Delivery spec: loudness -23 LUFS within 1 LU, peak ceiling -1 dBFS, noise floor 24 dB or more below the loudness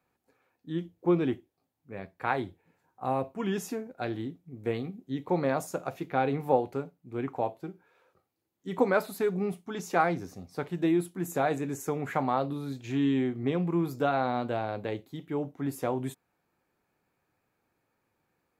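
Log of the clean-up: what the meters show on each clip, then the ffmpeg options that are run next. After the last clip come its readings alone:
loudness -31.0 LUFS; peak -10.0 dBFS; loudness target -23.0 LUFS
-> -af "volume=8dB"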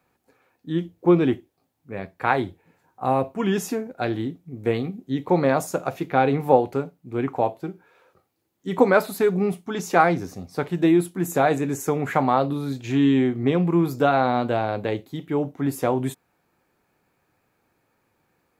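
loudness -23.0 LUFS; peak -2.0 dBFS; noise floor -71 dBFS

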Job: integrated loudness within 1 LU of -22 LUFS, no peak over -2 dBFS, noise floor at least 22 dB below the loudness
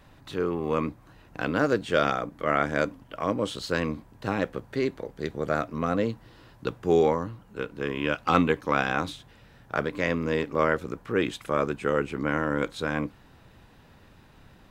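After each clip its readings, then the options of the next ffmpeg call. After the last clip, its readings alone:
loudness -28.0 LUFS; peak -5.0 dBFS; loudness target -22.0 LUFS
-> -af "volume=6dB,alimiter=limit=-2dB:level=0:latency=1"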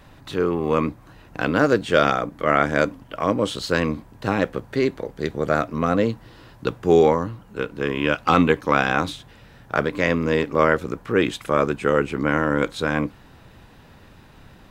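loudness -22.0 LUFS; peak -2.0 dBFS; noise floor -49 dBFS

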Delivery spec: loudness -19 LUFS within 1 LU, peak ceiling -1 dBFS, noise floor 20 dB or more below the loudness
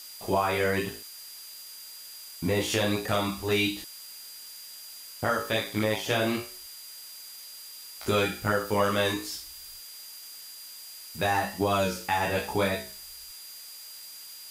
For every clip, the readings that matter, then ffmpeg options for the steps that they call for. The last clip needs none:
steady tone 4800 Hz; tone level -46 dBFS; noise floor -45 dBFS; noise floor target -48 dBFS; loudness -28.0 LUFS; peak -14.5 dBFS; loudness target -19.0 LUFS
-> -af "bandreject=f=4.8k:w=30"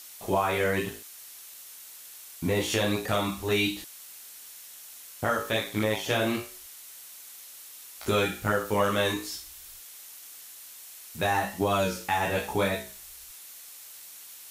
steady tone none; noise floor -47 dBFS; noise floor target -48 dBFS
-> -af "afftdn=nr=6:nf=-47"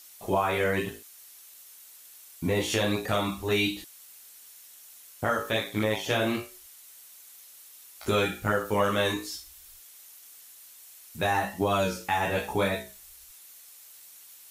noise floor -51 dBFS; loudness -28.0 LUFS; peak -15.0 dBFS; loudness target -19.0 LUFS
-> -af "volume=9dB"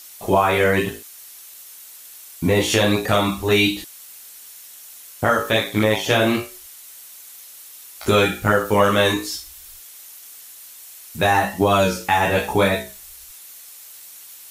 loudness -19.0 LUFS; peak -6.0 dBFS; noise floor -42 dBFS

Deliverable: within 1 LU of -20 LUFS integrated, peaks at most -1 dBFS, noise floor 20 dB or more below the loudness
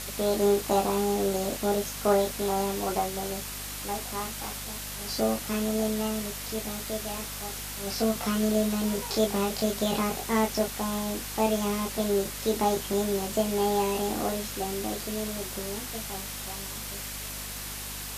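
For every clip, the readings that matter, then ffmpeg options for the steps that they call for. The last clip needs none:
hum 50 Hz; harmonics up to 250 Hz; hum level -42 dBFS; noise floor -37 dBFS; noise floor target -49 dBFS; loudness -29.0 LUFS; peak -9.5 dBFS; loudness target -20.0 LUFS
-> -af "bandreject=f=50:t=h:w=4,bandreject=f=100:t=h:w=4,bandreject=f=150:t=h:w=4,bandreject=f=200:t=h:w=4,bandreject=f=250:t=h:w=4"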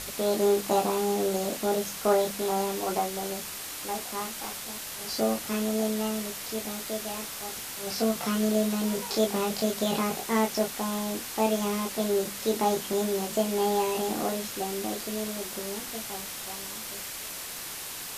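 hum none; noise floor -38 dBFS; noise floor target -49 dBFS
-> -af "afftdn=nr=11:nf=-38"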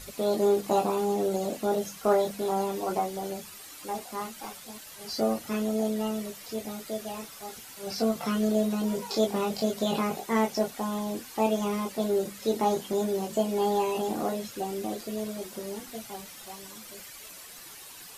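noise floor -46 dBFS; noise floor target -50 dBFS
-> -af "afftdn=nr=6:nf=-46"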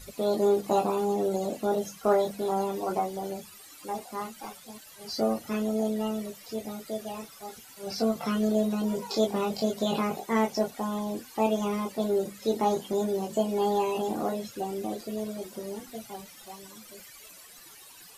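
noise floor -50 dBFS; loudness -29.5 LUFS; peak -11.0 dBFS; loudness target -20.0 LUFS
-> -af "volume=9.5dB"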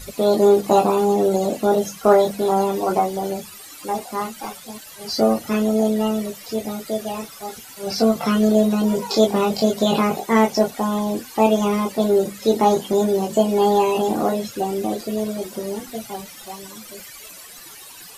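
loudness -20.0 LUFS; peak -1.5 dBFS; noise floor -41 dBFS

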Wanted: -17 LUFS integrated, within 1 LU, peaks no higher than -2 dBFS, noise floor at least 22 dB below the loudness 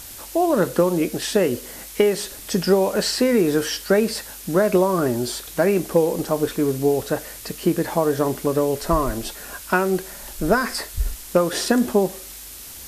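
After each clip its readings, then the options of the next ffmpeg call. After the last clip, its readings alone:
noise floor -38 dBFS; noise floor target -44 dBFS; loudness -21.5 LUFS; peak -4.5 dBFS; loudness target -17.0 LUFS
-> -af "afftdn=nr=6:nf=-38"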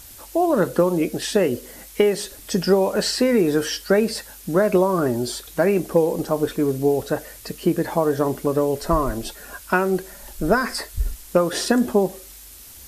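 noise floor -43 dBFS; noise floor target -44 dBFS
-> -af "afftdn=nr=6:nf=-43"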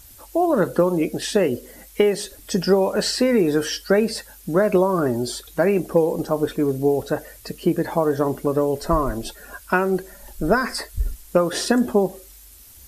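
noise floor -46 dBFS; loudness -21.5 LUFS; peak -4.5 dBFS; loudness target -17.0 LUFS
-> -af "volume=4.5dB,alimiter=limit=-2dB:level=0:latency=1"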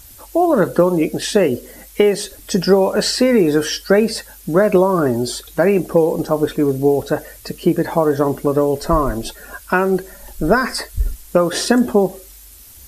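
loudness -17.0 LUFS; peak -2.0 dBFS; noise floor -41 dBFS

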